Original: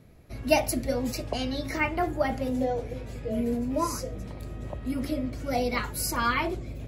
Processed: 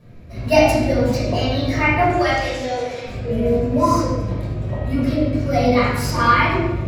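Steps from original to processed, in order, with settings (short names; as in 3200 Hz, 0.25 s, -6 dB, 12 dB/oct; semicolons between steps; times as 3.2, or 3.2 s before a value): median filter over 3 samples; 2.1–3.06 weighting filter ITU-R 468; reverb RT60 1.1 s, pre-delay 7 ms, DRR -9.5 dB; gain -2 dB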